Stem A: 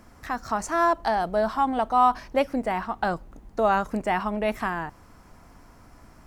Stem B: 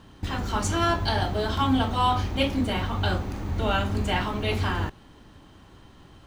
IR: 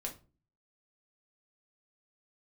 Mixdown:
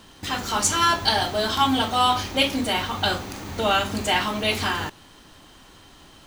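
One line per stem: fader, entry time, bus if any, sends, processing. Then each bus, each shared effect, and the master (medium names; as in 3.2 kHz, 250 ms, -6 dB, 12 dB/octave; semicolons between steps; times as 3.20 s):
-4.5 dB, 0.00 s, no send, none
+1.0 dB, 0.00 s, no send, high-pass 230 Hz 6 dB/octave; treble shelf 2.6 kHz +12 dB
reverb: none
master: none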